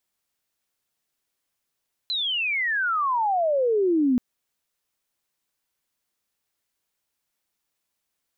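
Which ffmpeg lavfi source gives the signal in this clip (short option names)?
-f lavfi -i "aevalsrc='pow(10,(-23.5+6.5*t/2.08)/20)*sin(2*PI*4100*2.08/log(240/4100)*(exp(log(240/4100)*t/2.08)-1))':d=2.08:s=44100"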